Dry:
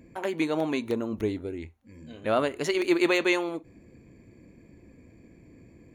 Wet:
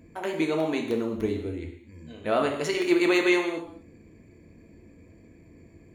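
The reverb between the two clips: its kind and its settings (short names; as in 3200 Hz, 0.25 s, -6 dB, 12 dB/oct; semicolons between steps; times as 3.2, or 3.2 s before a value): non-linear reverb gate 0.28 s falling, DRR 2.5 dB; gain -1 dB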